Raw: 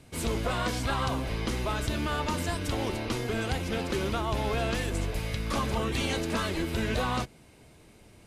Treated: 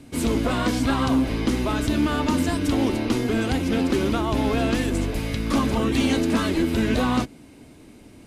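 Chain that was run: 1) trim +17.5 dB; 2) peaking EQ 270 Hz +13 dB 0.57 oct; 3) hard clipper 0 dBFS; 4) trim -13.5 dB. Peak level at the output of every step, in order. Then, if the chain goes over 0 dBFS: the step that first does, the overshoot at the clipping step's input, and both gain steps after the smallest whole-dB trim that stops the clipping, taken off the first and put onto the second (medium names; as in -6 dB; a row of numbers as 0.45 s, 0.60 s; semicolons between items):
-1.0 dBFS, +4.5 dBFS, 0.0 dBFS, -13.5 dBFS; step 2, 4.5 dB; step 1 +12.5 dB, step 4 -8.5 dB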